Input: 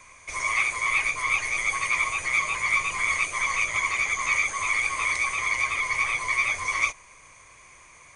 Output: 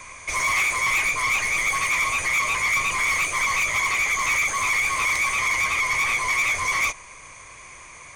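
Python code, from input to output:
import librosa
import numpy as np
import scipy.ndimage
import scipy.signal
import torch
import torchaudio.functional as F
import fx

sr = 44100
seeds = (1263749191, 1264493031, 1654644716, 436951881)

p1 = fx.rider(x, sr, range_db=5, speed_s=2.0)
p2 = x + (p1 * 10.0 ** (3.0 / 20.0))
y = 10.0 ** (-18.5 / 20.0) * np.tanh(p2 / 10.0 ** (-18.5 / 20.0))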